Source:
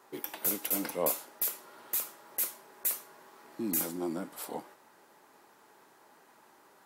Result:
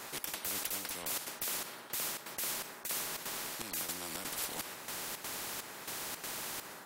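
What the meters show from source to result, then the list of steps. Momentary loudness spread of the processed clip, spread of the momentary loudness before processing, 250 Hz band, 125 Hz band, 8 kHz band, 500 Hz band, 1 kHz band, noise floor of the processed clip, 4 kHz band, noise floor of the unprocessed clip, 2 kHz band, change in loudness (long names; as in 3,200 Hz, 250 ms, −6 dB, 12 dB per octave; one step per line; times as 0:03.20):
4 LU, 10 LU, −11.0 dB, −4.0 dB, 0.0 dB, −8.0 dB, 0.0 dB, −50 dBFS, +7.0 dB, −61 dBFS, +5.5 dB, −4.5 dB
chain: automatic gain control gain up to 10 dB
gate pattern "xx.xxxx...x" 166 BPM −12 dB
reversed playback
downward compressor 10 to 1, threshold −35 dBFS, peak gain reduction 20 dB
reversed playback
every bin compressed towards the loudest bin 4 to 1
level +2.5 dB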